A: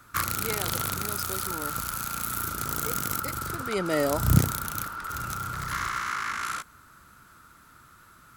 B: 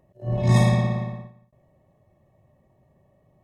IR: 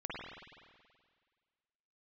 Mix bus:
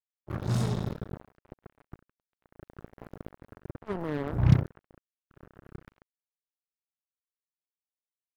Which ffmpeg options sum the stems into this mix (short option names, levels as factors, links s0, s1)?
-filter_complex "[0:a]equalizer=f=125:t=o:w=1:g=7,equalizer=f=2000:t=o:w=1:g=-3,equalizer=f=4000:t=o:w=1:g=-6,equalizer=f=8000:t=o:w=1:g=-7,acrossover=split=4200[s0][s1];[s1]acompressor=threshold=0.00398:ratio=4:attack=1:release=60[s2];[s0][s2]amix=inputs=2:normalize=0,adelay=150,volume=0.531,asplit=2[s3][s4];[s4]volume=0.0841[s5];[1:a]highshelf=f=2800:t=q:w=1.5:g=13.5,volume=0.282[s6];[2:a]atrim=start_sample=2205[s7];[s5][s7]afir=irnorm=-1:irlink=0[s8];[s3][s6][s8]amix=inputs=3:normalize=0,firequalizer=gain_entry='entry(420,0);entry(610,-12);entry(1200,-15)':delay=0.05:min_phase=1,acrusher=bits=4:mix=0:aa=0.5"